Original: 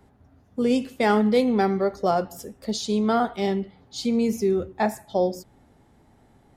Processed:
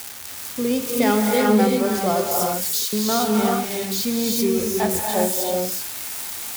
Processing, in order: zero-crossing glitches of -18.5 dBFS; 2.46–2.93 s: high-pass 970 Hz 24 dB/octave; gated-style reverb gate 410 ms rising, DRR -1 dB; trim -1 dB

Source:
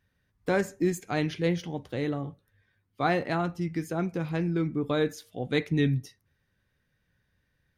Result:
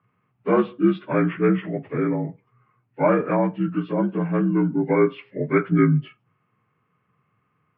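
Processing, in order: frequency axis rescaled in octaves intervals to 80%; elliptic band-pass 110–2600 Hz, stop band 40 dB; trim +9 dB

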